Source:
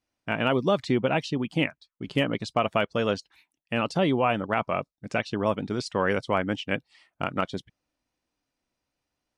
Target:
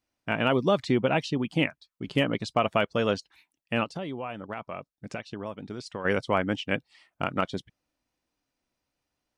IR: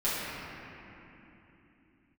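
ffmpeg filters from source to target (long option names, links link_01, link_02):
-filter_complex "[0:a]asplit=3[link_01][link_02][link_03];[link_01]afade=type=out:start_time=3.83:duration=0.02[link_04];[link_02]acompressor=threshold=-36dB:ratio=3,afade=type=in:start_time=3.83:duration=0.02,afade=type=out:start_time=6.04:duration=0.02[link_05];[link_03]afade=type=in:start_time=6.04:duration=0.02[link_06];[link_04][link_05][link_06]amix=inputs=3:normalize=0"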